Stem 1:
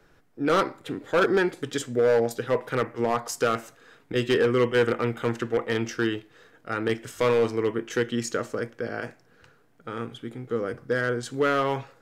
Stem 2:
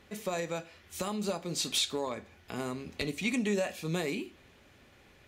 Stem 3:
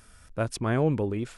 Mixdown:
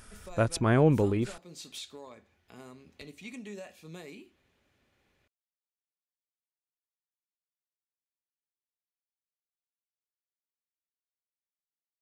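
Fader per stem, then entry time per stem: off, -13.0 dB, +2.0 dB; off, 0.00 s, 0.00 s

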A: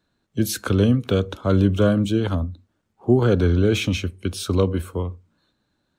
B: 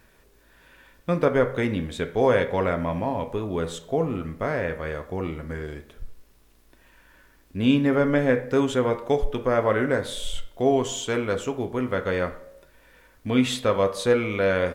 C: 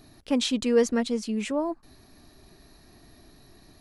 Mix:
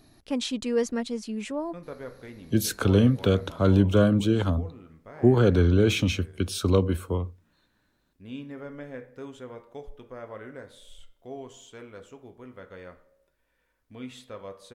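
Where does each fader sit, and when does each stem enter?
-2.0, -19.0, -4.0 dB; 2.15, 0.65, 0.00 s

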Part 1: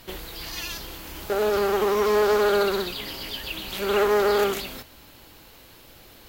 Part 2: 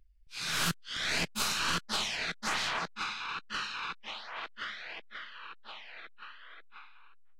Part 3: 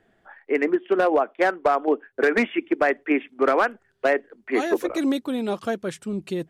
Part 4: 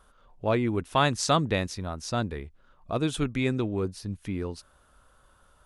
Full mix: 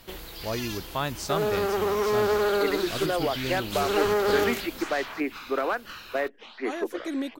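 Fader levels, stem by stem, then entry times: -3.5, -6.0, -7.5, -6.5 dB; 0.00, 2.35, 2.10, 0.00 s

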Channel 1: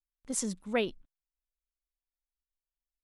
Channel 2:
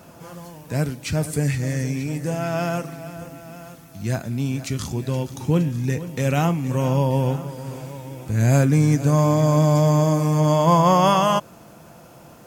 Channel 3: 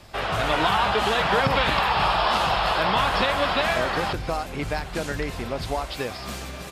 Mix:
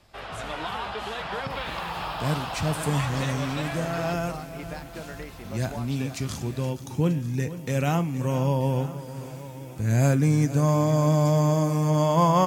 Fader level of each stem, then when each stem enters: -16.0, -4.0, -11.0 dB; 0.00, 1.50, 0.00 s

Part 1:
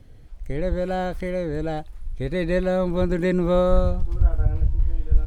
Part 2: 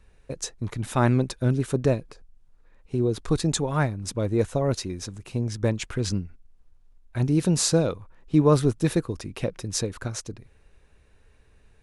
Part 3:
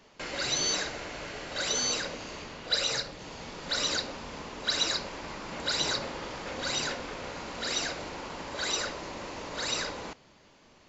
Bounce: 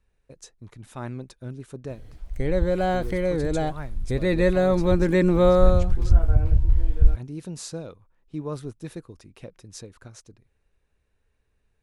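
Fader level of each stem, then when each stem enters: +2.0 dB, -13.5 dB, off; 1.90 s, 0.00 s, off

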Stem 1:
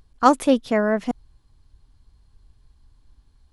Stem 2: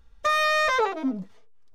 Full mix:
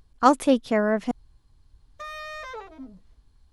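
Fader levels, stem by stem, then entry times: -2.0, -15.0 dB; 0.00, 1.75 s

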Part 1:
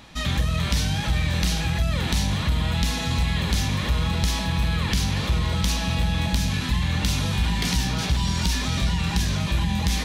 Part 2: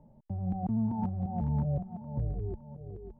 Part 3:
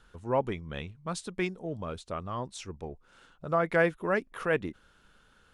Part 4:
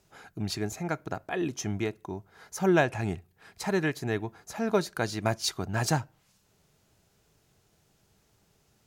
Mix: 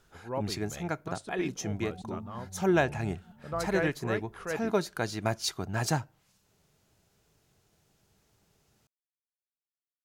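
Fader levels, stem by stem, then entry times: off, -13.0 dB, -7.0 dB, -2.0 dB; off, 1.35 s, 0.00 s, 0.00 s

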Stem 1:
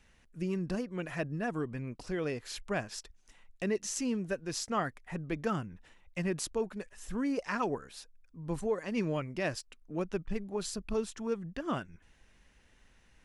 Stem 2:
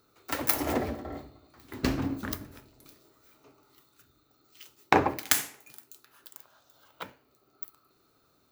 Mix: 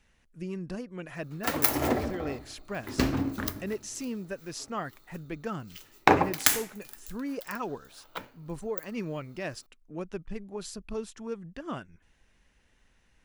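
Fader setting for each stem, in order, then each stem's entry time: -2.5, +2.0 dB; 0.00, 1.15 s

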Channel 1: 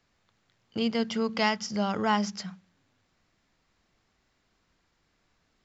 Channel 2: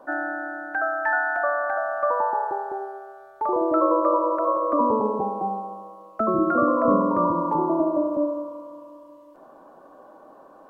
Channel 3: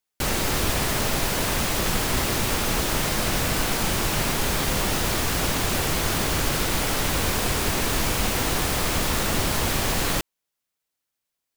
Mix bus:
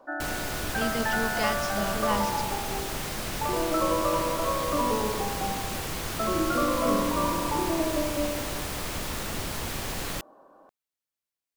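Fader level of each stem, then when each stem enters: -4.0, -6.0, -9.0 dB; 0.00, 0.00, 0.00 s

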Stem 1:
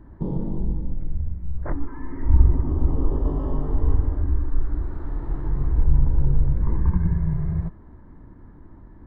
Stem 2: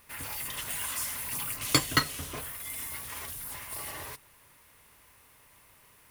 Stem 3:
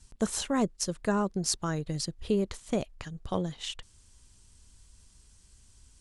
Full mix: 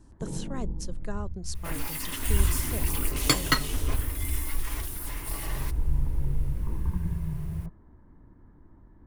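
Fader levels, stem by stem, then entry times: -8.5, +1.0, -9.5 dB; 0.00, 1.55, 0.00 s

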